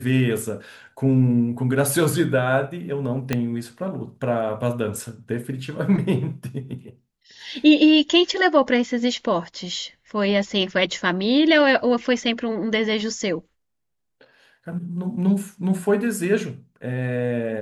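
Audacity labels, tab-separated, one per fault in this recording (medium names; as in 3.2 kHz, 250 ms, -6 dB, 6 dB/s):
3.330000	3.330000	pop -8 dBFS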